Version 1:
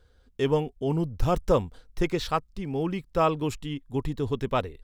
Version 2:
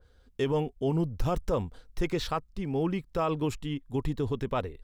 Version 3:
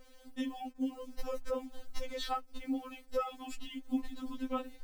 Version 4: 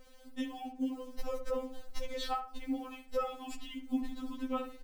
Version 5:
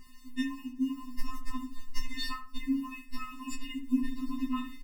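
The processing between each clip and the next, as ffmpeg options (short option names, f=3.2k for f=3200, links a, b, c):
-af "alimiter=limit=-19dB:level=0:latency=1:release=47,adynamicequalizer=threshold=0.00447:dfrequency=2300:dqfactor=0.7:tfrequency=2300:tqfactor=0.7:attack=5:release=100:ratio=0.375:range=2.5:mode=cutabove:tftype=highshelf"
-af "acompressor=threshold=-37dB:ratio=6,acrusher=bits=10:mix=0:aa=0.000001,afftfilt=real='re*3.46*eq(mod(b,12),0)':imag='im*3.46*eq(mod(b,12),0)':win_size=2048:overlap=0.75,volume=6dB"
-filter_complex "[0:a]asplit=2[a][b];[b]adelay=69,lowpass=f=1.9k:p=1,volume=-8dB,asplit=2[c][d];[d]adelay=69,lowpass=f=1.9k:p=1,volume=0.31,asplit=2[e][f];[f]adelay=69,lowpass=f=1.9k:p=1,volume=0.31,asplit=2[g][h];[h]adelay=69,lowpass=f=1.9k:p=1,volume=0.31[i];[a][c][e][g][i]amix=inputs=5:normalize=0"
-filter_complex "[0:a]asplit=2[a][b];[b]adelay=21,volume=-7.5dB[c];[a][c]amix=inputs=2:normalize=0,afftfilt=real='re*eq(mod(floor(b*sr/1024/430),2),0)':imag='im*eq(mod(floor(b*sr/1024/430),2),0)':win_size=1024:overlap=0.75,volume=7dB"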